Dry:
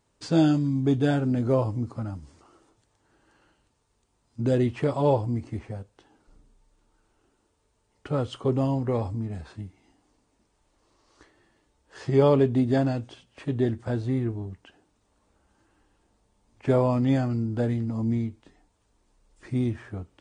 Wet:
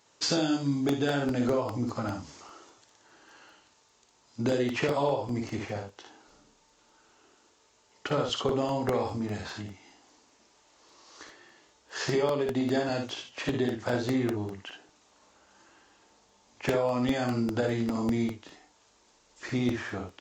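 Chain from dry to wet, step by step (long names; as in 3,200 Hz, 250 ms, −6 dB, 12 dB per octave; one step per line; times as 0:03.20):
high-pass filter 580 Hz 6 dB per octave
high-shelf EQ 4,200 Hz +7 dB
downward compressor 12 to 1, threshold −33 dBFS, peak gain reduction 14.5 dB
on a send: ambience of single reflections 57 ms −5 dB, 77 ms −11 dB
on the sum: downsampling to 16,000 Hz
regular buffer underruns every 0.20 s, samples 64, repeat, from 0:00.89
level +8.5 dB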